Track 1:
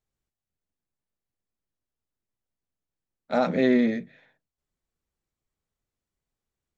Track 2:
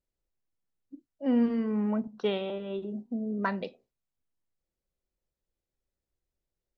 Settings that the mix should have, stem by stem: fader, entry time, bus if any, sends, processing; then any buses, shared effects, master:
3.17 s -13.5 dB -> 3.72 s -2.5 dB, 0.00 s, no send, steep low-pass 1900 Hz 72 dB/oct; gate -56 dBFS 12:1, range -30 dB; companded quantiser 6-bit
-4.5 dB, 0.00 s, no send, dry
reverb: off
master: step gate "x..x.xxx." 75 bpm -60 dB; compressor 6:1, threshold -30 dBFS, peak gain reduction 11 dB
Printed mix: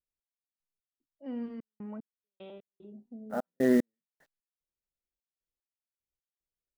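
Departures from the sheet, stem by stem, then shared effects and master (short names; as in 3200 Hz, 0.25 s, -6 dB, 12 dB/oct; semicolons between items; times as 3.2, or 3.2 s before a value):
stem 2 -4.5 dB -> -12.5 dB; master: missing compressor 6:1, threshold -30 dBFS, peak gain reduction 11 dB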